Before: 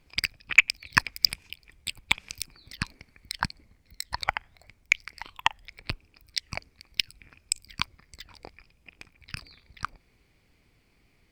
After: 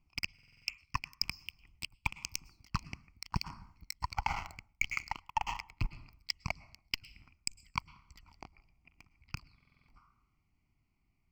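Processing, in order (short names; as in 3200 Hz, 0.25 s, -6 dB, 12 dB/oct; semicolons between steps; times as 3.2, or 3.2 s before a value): Doppler pass-by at 4.55, 9 m/s, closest 5.2 m; tilt shelf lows +4 dB, about 1500 Hz; plate-style reverb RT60 0.81 s, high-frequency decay 0.65×, pre-delay 95 ms, DRR 17.5 dB; in parallel at -4 dB: wrapped overs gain 7 dB; on the sum: sample leveller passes 2; reverse; compressor 20:1, threshold -35 dBFS, peak gain reduction 24 dB; reverse; fixed phaser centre 2500 Hz, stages 8; stuck buffer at 0.34/9.56, samples 2048, times 6; gain +6.5 dB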